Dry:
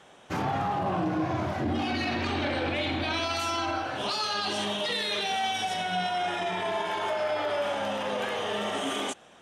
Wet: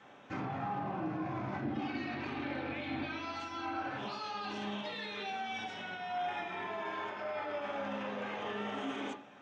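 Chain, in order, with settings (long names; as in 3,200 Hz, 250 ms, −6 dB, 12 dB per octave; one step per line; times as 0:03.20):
brickwall limiter −28.5 dBFS, peak gain reduction 10.5 dB
high-frequency loss of the air 200 metres
convolution reverb RT60 0.40 s, pre-delay 3 ms, DRR −0.5 dB
level −2 dB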